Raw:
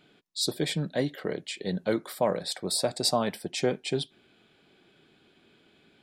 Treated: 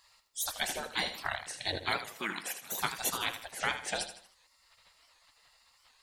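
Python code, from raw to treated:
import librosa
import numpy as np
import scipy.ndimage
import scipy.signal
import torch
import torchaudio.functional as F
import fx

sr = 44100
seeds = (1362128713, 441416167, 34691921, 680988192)

p1 = fx.highpass(x, sr, hz=790.0, slope=12, at=(2.09, 2.72))
p2 = fx.spec_gate(p1, sr, threshold_db=-20, keep='weak')
p3 = fx.rider(p2, sr, range_db=4, speed_s=0.5)
p4 = p2 + F.gain(torch.from_numpy(p3), 3.0).numpy()
p5 = fx.echo_feedback(p4, sr, ms=79, feedback_pct=40, wet_db=-10.5)
p6 = fx.record_warp(p5, sr, rpm=78.0, depth_cents=160.0)
y = F.gain(torch.from_numpy(p6), 2.5).numpy()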